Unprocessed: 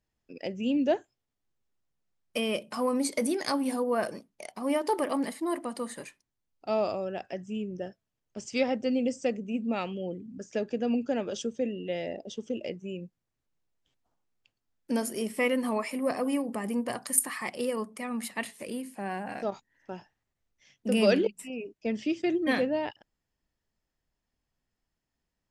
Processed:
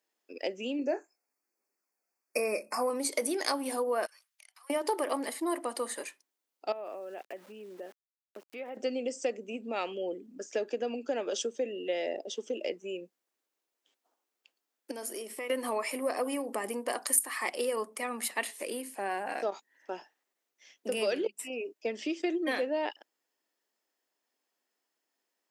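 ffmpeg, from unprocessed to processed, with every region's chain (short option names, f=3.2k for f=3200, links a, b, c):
-filter_complex "[0:a]asettb=1/sr,asplit=3[a][b][c];[a]atrim=end=0.794[d];[b]atrim=start=0.79:end=2.9,asetpts=PTS-STARTPTS,afade=t=in:d=0.004:c=qsin,afade=t=out:st=2.106:d=0.004:c=qsin,aphaser=in_gain=1:out_gain=1:delay=1.5:decay=0.3:speed=1.2:type=triangular,asuperstop=centerf=3400:order=20:qfactor=2.1,asplit=2[e][f];[f]adelay=24,volume=-9dB[g];[e][g]amix=inputs=2:normalize=0,atrim=end_sample=93051[h];[c]atrim=start=2.896[i];[d][h]acrossfade=d=0.004:c1=hsin:c2=qsin[j];[j][i]acrossfade=d=0.004:c1=qsin:c2=hsin,asettb=1/sr,asplit=3[k][l][m];[k]atrim=end=4.064[n];[l]atrim=start=4.06:end=4.7,asetpts=PTS-STARTPTS,afade=t=in:d=0.004:c=qsin,afade=t=out:st=0.636:d=0.004:c=qsin,highpass=f=1.3k:w=0.5412,highpass=f=1.3k:w=1.3066,acompressor=threshold=-59dB:ratio=5:attack=3.2:release=140:knee=1:detection=peak[o];[m]atrim=start=4.696[p];[n][o]acrossfade=d=0.004:c1=hsin:c2=qsin[q];[q][p]acrossfade=d=0.004:c1=qsin:c2=hsin,asettb=1/sr,asplit=3[r][s][t];[r]atrim=end=6.724[u];[s]atrim=start=6.72:end=8.77,asetpts=PTS-STARTPTS,afade=t=in:d=0.004:c=qsin,afade=t=out:st=2.046:d=0.004:c=qsin,lowpass=f=2.7k:w=0.5412,lowpass=f=2.7k:w=1.3066,aeval=exprs='val(0)*gte(abs(val(0)),0.00282)':c=same,acompressor=threshold=-41dB:ratio=4:attack=3.2:release=140:knee=1:detection=peak[v];[t]atrim=start=8.766[w];[u][v]acrossfade=d=0.004:c1=hsin:c2=qsin[x];[x][w]acrossfade=d=0.004:c1=qsin:c2=hsin,asettb=1/sr,asplit=3[y][z][aa];[y]atrim=end=14.914[ab];[z]atrim=start=14.91:end=15.5,asetpts=PTS-STARTPTS,afade=t=in:d=0.004:c=qsin,afade=t=out:st=0.586:d=0.004:c=qsin,agate=range=-33dB:threshold=-40dB:ratio=3:release=100:detection=peak,acompressor=threshold=-37dB:ratio=8:attack=3.2:release=140:knee=1:detection=peak[ac];[aa]atrim=start=15.496[ad];[ab][ac]acrossfade=d=0.004:c1=hsin:c2=qsin[ae];[ae][ad]acrossfade=d=0.004:c1=qsin:c2=hsin,acompressor=threshold=-29dB:ratio=5,highpass=f=320:w=0.5412,highpass=f=320:w=1.3066,highshelf=f=9.5k:g=6,volume=3dB"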